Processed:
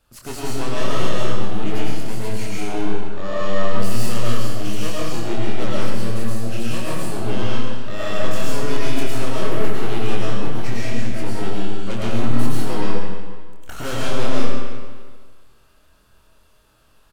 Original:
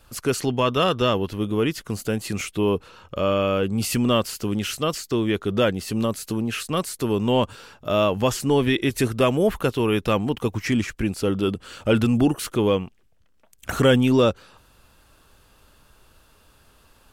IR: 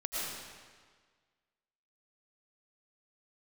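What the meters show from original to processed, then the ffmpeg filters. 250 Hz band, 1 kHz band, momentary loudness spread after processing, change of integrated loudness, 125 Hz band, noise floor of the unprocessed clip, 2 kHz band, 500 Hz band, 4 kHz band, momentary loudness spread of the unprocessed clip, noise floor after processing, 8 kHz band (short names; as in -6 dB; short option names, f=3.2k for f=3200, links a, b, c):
-4.0 dB, -1.5 dB, 5 LU, -3.5 dB, 0.0 dB, -58 dBFS, -1.0 dB, -5.0 dB, -2.5 dB, 7 LU, -54 dBFS, -1.5 dB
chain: -filter_complex "[0:a]aeval=exprs='0.447*(cos(1*acos(clip(val(0)/0.447,-1,1)))-cos(1*PI/2))+0.1*(cos(5*acos(clip(val(0)/0.447,-1,1)))-cos(5*PI/2))+0.141*(cos(8*acos(clip(val(0)/0.447,-1,1)))-cos(8*PI/2))':c=same,asplit=2[a][b];[b]adelay=26,volume=-5dB[c];[a][c]amix=inputs=2:normalize=0[d];[1:a]atrim=start_sample=2205[e];[d][e]afir=irnorm=-1:irlink=0,volume=-14.5dB"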